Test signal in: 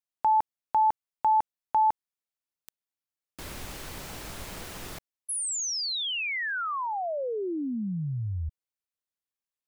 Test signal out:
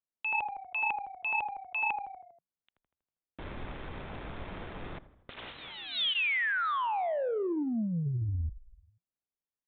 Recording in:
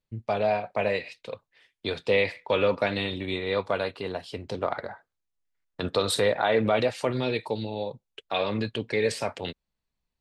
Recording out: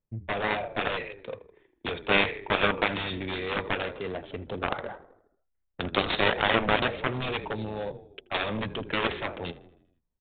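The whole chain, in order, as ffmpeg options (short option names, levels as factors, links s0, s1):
-filter_complex "[0:a]bandreject=f=2900:w=16,asplit=2[s0][s1];[s1]asplit=6[s2][s3][s4][s5][s6][s7];[s2]adelay=80,afreqshift=-31,volume=0.178[s8];[s3]adelay=160,afreqshift=-62,volume=0.104[s9];[s4]adelay=240,afreqshift=-93,volume=0.0596[s10];[s5]adelay=320,afreqshift=-124,volume=0.0347[s11];[s6]adelay=400,afreqshift=-155,volume=0.0202[s12];[s7]adelay=480,afreqshift=-186,volume=0.0116[s13];[s8][s9][s10][s11][s12][s13]amix=inputs=6:normalize=0[s14];[s0][s14]amix=inputs=2:normalize=0,crystalizer=i=3:c=0,adynamicsmooth=sensitivity=5:basefreq=1000,aeval=exprs='0.398*(cos(1*acos(clip(val(0)/0.398,-1,1)))-cos(1*PI/2))+0.126*(cos(7*acos(clip(val(0)/0.398,-1,1)))-cos(7*PI/2))':c=same,aresample=8000,aresample=44100,volume=0.891"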